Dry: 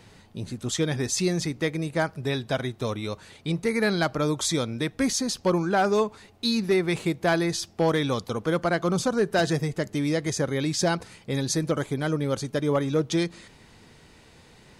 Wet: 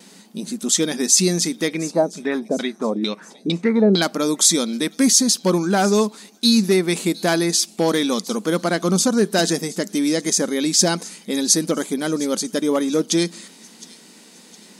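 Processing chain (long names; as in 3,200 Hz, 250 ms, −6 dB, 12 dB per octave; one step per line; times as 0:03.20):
noise gate with hold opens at −46 dBFS
bass and treble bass +13 dB, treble +13 dB
0:01.68–0:04.02: auto-filter low-pass saw down 2.2 Hz 340–4,200 Hz
linear-phase brick-wall high-pass 180 Hz
delay with a high-pass on its return 712 ms, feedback 44%, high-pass 3,300 Hz, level −18 dB
level +2.5 dB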